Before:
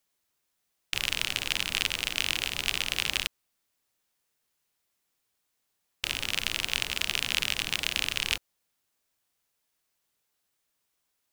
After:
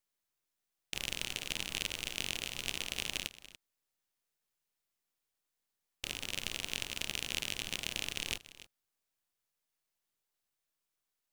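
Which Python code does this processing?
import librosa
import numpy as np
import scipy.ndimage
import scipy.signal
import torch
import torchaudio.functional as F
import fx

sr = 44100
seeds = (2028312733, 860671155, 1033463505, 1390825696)

y = np.where(x < 0.0, 10.0 ** (-7.0 / 20.0) * x, x)
y = y + 10.0 ** (-16.5 / 20.0) * np.pad(y, (int(288 * sr / 1000.0), 0))[:len(y)]
y = F.gain(torch.from_numpy(y), -6.5).numpy()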